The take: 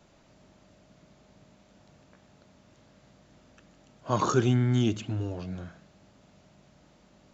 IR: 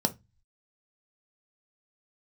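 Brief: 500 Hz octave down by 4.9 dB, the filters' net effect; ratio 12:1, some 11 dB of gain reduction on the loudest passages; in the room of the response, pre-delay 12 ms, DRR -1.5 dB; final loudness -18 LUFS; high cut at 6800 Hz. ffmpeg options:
-filter_complex "[0:a]lowpass=6.8k,equalizer=f=500:t=o:g=-7.5,acompressor=threshold=-32dB:ratio=12,asplit=2[a][b];[1:a]atrim=start_sample=2205,adelay=12[c];[b][c]afir=irnorm=-1:irlink=0,volume=-6.5dB[d];[a][d]amix=inputs=2:normalize=0,volume=11.5dB"

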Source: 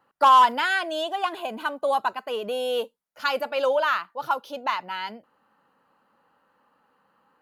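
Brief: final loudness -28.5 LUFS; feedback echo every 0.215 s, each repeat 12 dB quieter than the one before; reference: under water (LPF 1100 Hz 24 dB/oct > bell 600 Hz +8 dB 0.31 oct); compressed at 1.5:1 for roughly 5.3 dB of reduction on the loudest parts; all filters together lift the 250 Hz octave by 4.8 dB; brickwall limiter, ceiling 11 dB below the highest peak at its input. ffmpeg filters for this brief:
-af "equalizer=f=250:t=o:g=5.5,acompressor=threshold=-27dB:ratio=1.5,alimiter=limit=-24dB:level=0:latency=1,lowpass=f=1.1k:w=0.5412,lowpass=f=1.1k:w=1.3066,equalizer=f=600:t=o:w=0.31:g=8,aecho=1:1:215|430|645:0.251|0.0628|0.0157,volume=2.5dB"

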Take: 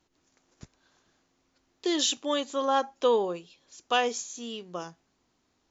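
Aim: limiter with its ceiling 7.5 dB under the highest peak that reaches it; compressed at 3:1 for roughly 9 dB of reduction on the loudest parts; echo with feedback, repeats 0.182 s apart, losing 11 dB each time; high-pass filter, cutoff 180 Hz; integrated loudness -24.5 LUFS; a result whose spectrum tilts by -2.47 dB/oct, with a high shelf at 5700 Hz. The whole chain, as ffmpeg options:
-af "highpass=180,highshelf=f=5.7k:g=-7.5,acompressor=threshold=-31dB:ratio=3,alimiter=level_in=1dB:limit=-24dB:level=0:latency=1,volume=-1dB,aecho=1:1:182|364|546:0.282|0.0789|0.0221,volume=12.5dB"

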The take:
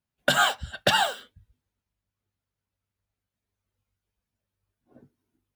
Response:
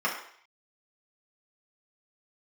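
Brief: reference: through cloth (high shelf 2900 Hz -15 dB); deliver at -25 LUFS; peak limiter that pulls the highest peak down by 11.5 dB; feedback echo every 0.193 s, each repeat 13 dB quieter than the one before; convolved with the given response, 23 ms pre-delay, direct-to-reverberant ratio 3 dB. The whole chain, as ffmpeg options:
-filter_complex "[0:a]alimiter=limit=-20.5dB:level=0:latency=1,aecho=1:1:193|386|579:0.224|0.0493|0.0108,asplit=2[a][b];[1:a]atrim=start_sample=2205,adelay=23[c];[b][c]afir=irnorm=-1:irlink=0,volume=-14.5dB[d];[a][d]amix=inputs=2:normalize=0,highshelf=f=2.9k:g=-15,volume=8.5dB"

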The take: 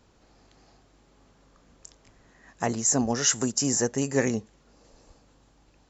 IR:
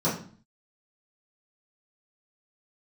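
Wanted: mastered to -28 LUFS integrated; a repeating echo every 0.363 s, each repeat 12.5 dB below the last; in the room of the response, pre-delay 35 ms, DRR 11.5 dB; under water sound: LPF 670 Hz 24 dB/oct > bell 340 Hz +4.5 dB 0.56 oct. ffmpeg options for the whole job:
-filter_complex "[0:a]aecho=1:1:363|726|1089:0.237|0.0569|0.0137,asplit=2[a][b];[1:a]atrim=start_sample=2205,adelay=35[c];[b][c]afir=irnorm=-1:irlink=0,volume=-23.5dB[d];[a][d]amix=inputs=2:normalize=0,lowpass=f=670:w=0.5412,lowpass=f=670:w=1.3066,equalizer=f=340:t=o:w=0.56:g=4.5,volume=-1dB"

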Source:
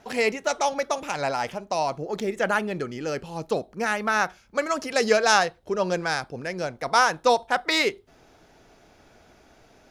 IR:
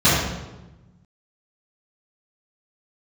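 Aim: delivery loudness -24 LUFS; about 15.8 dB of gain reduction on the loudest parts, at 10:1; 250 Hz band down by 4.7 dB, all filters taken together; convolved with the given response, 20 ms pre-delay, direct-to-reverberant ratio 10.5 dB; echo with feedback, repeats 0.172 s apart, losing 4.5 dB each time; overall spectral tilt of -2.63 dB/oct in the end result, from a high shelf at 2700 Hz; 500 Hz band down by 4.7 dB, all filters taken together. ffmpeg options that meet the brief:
-filter_complex "[0:a]equalizer=f=250:t=o:g=-5,equalizer=f=500:t=o:g=-5,highshelf=f=2.7k:g=8,acompressor=threshold=-28dB:ratio=10,aecho=1:1:172|344|516|688|860|1032|1204|1376|1548:0.596|0.357|0.214|0.129|0.0772|0.0463|0.0278|0.0167|0.01,asplit=2[a][b];[1:a]atrim=start_sample=2205,adelay=20[c];[b][c]afir=irnorm=-1:irlink=0,volume=-33.5dB[d];[a][d]amix=inputs=2:normalize=0,volume=7dB"

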